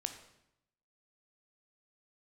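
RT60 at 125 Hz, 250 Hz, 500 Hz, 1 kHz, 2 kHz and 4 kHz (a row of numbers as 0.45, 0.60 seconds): 1.0, 0.95, 0.80, 0.80, 0.75, 0.70 seconds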